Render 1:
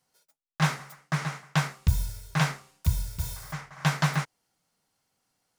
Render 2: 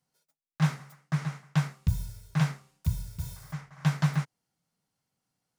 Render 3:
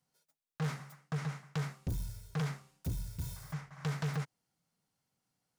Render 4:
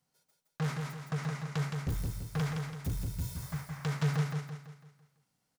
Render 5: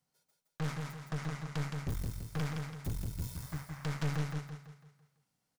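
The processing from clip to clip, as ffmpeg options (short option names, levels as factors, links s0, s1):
-af "equalizer=f=150:t=o:w=1.6:g=9,volume=0.398"
-af "asoftclip=type=tanh:threshold=0.0335,volume=0.891"
-af "aecho=1:1:167|334|501|668|835|1002:0.631|0.278|0.122|0.0537|0.0236|0.0104,volume=1.26"
-af "aeval=exprs='(tanh(31.6*val(0)+0.7)-tanh(0.7))/31.6':c=same,volume=1.12"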